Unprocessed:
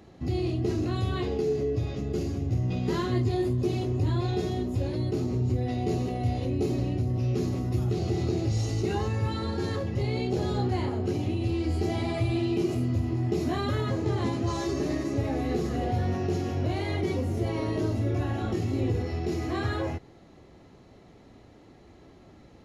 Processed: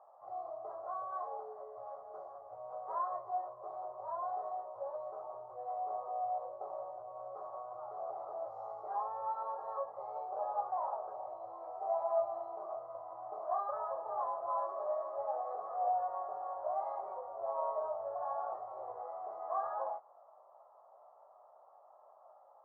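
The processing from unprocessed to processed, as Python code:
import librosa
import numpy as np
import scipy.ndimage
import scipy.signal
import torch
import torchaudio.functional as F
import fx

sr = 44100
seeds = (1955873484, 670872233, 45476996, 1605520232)

y = scipy.signal.sosfilt(scipy.signal.ellip(3, 1.0, 50, [600.0, 1200.0], 'bandpass', fs=sr, output='sos'), x)
y = fx.doubler(y, sr, ms=18.0, db=-6)
y = y * 10.0 ** (1.5 / 20.0)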